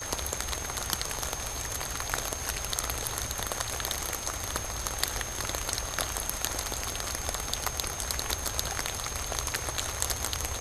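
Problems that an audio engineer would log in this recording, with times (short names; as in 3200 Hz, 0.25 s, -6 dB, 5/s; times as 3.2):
tone 6400 Hz -38 dBFS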